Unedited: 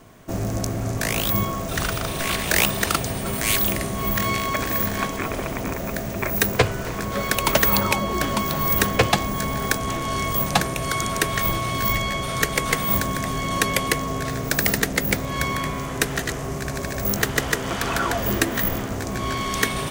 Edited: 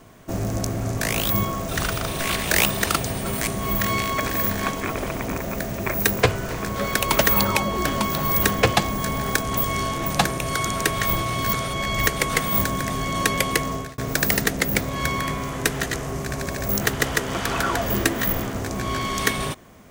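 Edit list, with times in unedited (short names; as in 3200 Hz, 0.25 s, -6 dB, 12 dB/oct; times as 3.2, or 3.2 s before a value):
3.47–3.83 cut
9.93–10.42 reverse
11.89–12.43 reverse
14.08–14.34 fade out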